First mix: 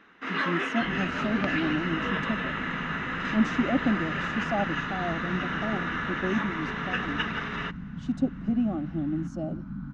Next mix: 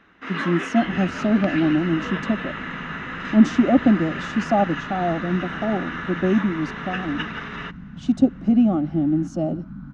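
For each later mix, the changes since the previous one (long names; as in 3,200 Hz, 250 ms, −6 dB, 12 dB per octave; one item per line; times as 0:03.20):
speech +9.5 dB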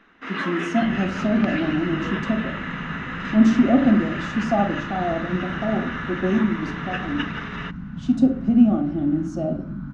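speech −6.0 dB
second sound +4.5 dB
reverb: on, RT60 0.45 s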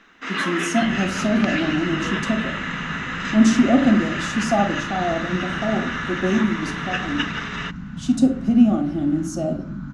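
master: remove head-to-tape spacing loss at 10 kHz 22 dB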